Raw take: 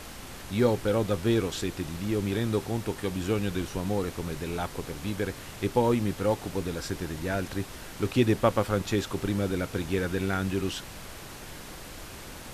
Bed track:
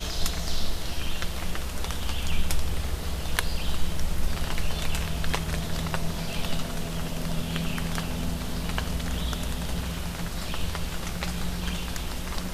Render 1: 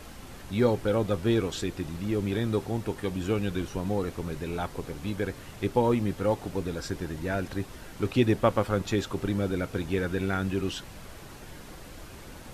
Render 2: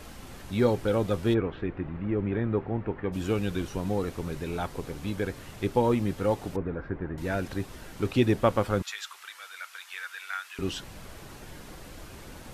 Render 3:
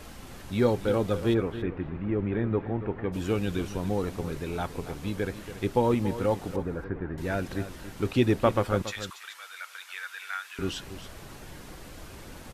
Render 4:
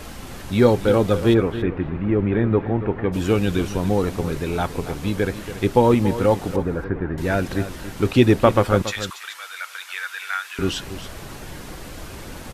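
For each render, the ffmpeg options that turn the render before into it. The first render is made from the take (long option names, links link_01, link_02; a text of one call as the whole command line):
ffmpeg -i in.wav -af "afftdn=noise_reduction=6:noise_floor=-43" out.wav
ffmpeg -i in.wav -filter_complex "[0:a]asplit=3[link_01][link_02][link_03];[link_01]afade=type=out:start_time=1.33:duration=0.02[link_04];[link_02]lowpass=frequency=2200:width=0.5412,lowpass=frequency=2200:width=1.3066,afade=type=in:start_time=1.33:duration=0.02,afade=type=out:start_time=3.12:duration=0.02[link_05];[link_03]afade=type=in:start_time=3.12:duration=0.02[link_06];[link_04][link_05][link_06]amix=inputs=3:normalize=0,asettb=1/sr,asplit=3[link_07][link_08][link_09];[link_07]atrim=end=6.564[link_10];[link_08]atrim=start=6.56:end=7.18,asetpts=PTS-STARTPTS,afade=type=in:duration=0.004:curve=qsin,afade=type=out:start_time=0.616:duration=0.004:curve=qsin,lowpass=frequency=1900:width=0.5412,lowpass=frequency=1900:width=1.3066[link_11];[link_09]atrim=start=7.176[link_12];[link_10][link_11]acrossfade=duration=0.004:curve1=hsin:curve2=qsin[link_13];[link_13][link_12]acrossfade=duration=0.004:curve1=qsin:curve2=hsin,asettb=1/sr,asplit=3[link_14][link_15][link_16];[link_14]atrim=end=8.824[link_17];[link_15]atrim=start=8.82:end=10.59,asetpts=PTS-STARTPTS,afade=type=in:duration=0.004:curve=qsin,afade=type=out:start_time=1.766:duration=0.004:curve=qsin,highpass=frequency=1200:width=0.5412,highpass=frequency=1200:width=1.3066[link_18];[link_16]atrim=start=10.586[link_19];[link_17][link_18]acrossfade=duration=0.004:curve1=hsin:curve2=qsin[link_20];[link_20][link_19]acrossfade=duration=0.004:curve1=qsin:curve2=hsin" out.wav
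ffmpeg -i in.wav -af "aecho=1:1:281:0.237" out.wav
ffmpeg -i in.wav -af "volume=8.5dB,alimiter=limit=-2dB:level=0:latency=1" out.wav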